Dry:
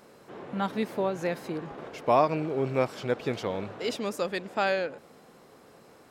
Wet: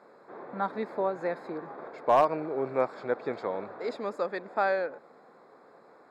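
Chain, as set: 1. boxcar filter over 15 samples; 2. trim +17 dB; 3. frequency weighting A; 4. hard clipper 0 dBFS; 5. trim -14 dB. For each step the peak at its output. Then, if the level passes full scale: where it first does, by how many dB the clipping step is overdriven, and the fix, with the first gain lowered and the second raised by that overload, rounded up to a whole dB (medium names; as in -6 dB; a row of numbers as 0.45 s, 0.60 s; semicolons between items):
-11.0 dBFS, +6.0 dBFS, +5.0 dBFS, 0.0 dBFS, -14.0 dBFS; step 2, 5.0 dB; step 2 +12 dB, step 5 -9 dB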